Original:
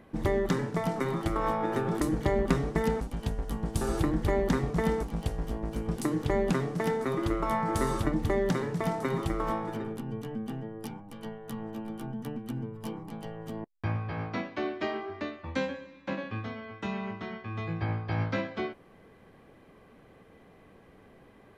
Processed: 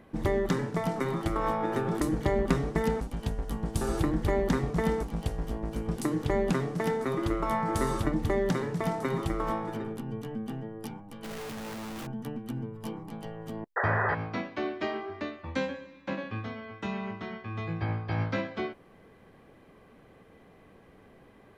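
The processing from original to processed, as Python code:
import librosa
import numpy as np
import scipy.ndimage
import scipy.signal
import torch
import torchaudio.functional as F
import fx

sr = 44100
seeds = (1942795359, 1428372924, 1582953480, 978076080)

y = fx.clip_1bit(x, sr, at=(11.24, 12.07))
y = fx.spec_paint(y, sr, seeds[0], shape='noise', start_s=13.76, length_s=0.39, low_hz=370.0, high_hz=2000.0, level_db=-28.0)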